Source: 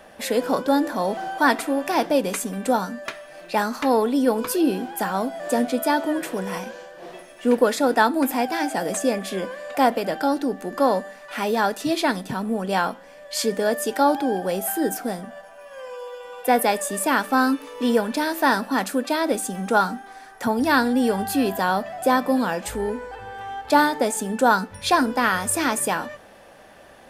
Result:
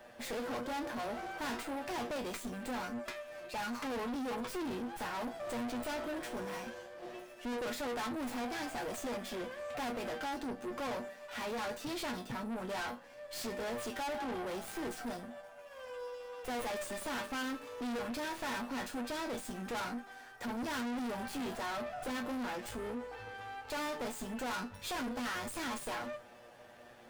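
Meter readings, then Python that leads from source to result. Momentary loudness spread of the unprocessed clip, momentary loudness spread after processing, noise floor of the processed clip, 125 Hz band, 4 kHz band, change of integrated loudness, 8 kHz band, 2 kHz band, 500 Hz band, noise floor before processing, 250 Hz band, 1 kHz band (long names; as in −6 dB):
14 LU, 7 LU, −54 dBFS, −15.0 dB, −12.5 dB, −17.0 dB, −17.0 dB, −15.5 dB, −17.0 dB, −46 dBFS, −16.5 dB, −18.0 dB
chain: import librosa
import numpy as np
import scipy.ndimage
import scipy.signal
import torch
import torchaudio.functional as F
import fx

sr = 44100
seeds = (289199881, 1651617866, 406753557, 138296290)

y = fx.comb_fb(x, sr, f0_hz=120.0, decay_s=0.18, harmonics='all', damping=0.0, mix_pct=90)
y = fx.tube_stage(y, sr, drive_db=38.0, bias=0.55)
y = fx.running_max(y, sr, window=3)
y = y * 10.0 ** (2.0 / 20.0)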